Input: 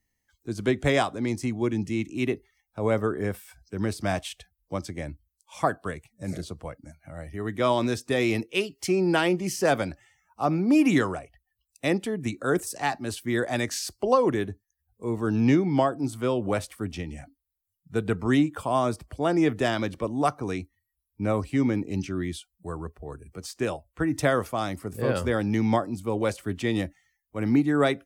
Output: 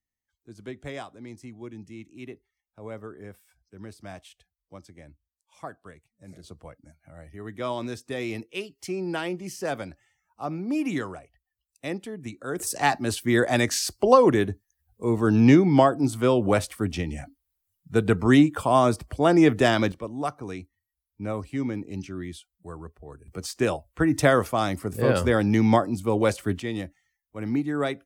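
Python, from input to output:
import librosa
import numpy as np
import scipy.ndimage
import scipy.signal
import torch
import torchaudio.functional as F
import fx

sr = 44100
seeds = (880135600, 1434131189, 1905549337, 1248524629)

y = fx.gain(x, sr, db=fx.steps((0.0, -14.0), (6.44, -7.0), (12.6, 5.0), (19.92, -5.0), (23.28, 4.0), (26.6, -4.5)))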